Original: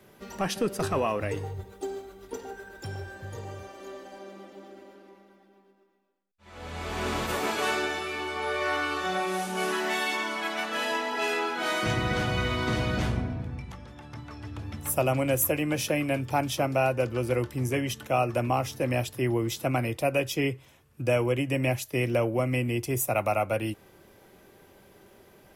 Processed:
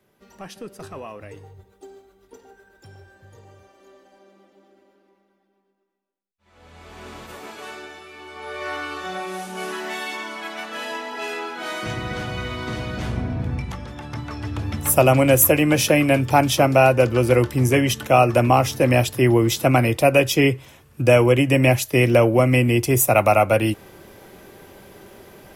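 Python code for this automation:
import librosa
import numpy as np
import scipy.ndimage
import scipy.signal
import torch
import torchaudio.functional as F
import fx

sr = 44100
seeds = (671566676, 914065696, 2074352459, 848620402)

y = fx.gain(x, sr, db=fx.line((8.12, -9.0), (8.67, -1.0), (12.98, -1.0), (13.5, 10.5)))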